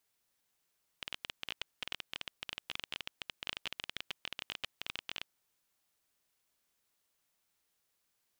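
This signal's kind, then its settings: random clicks 19/s -20.5 dBFS 4.22 s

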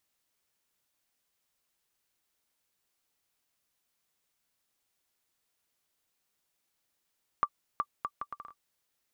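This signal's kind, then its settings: bouncing ball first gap 0.37 s, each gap 0.67, 1170 Hz, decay 59 ms -15 dBFS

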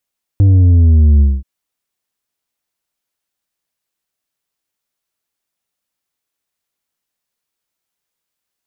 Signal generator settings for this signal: sub drop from 100 Hz, over 1.03 s, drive 6 dB, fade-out 0.22 s, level -6 dB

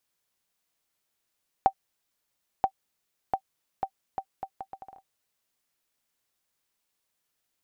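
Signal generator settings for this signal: bouncing ball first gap 0.98 s, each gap 0.71, 774 Hz, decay 73 ms -9 dBFS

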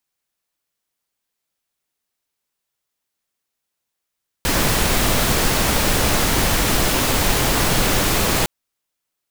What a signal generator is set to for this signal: noise pink, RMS -17.5 dBFS 4.01 s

